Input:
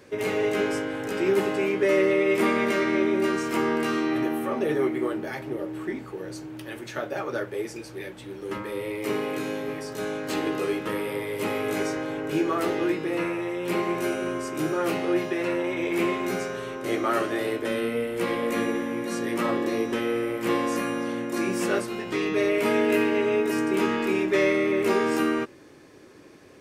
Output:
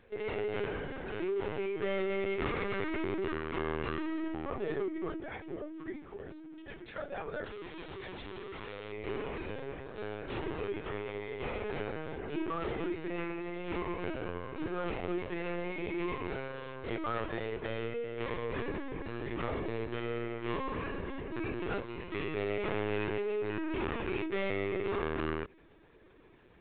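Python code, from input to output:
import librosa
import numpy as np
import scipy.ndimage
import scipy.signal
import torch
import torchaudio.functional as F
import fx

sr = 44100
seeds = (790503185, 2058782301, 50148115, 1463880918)

y = fx.clip_1bit(x, sr, at=(7.45, 8.92))
y = fx.low_shelf(y, sr, hz=200.0, db=-4.5)
y = np.clip(y, -10.0 ** (-21.0 / 20.0), 10.0 ** (-21.0 / 20.0))
y = fx.lpc_vocoder(y, sr, seeds[0], excitation='pitch_kept', order=16)
y = F.gain(torch.from_numpy(y), -8.5).numpy()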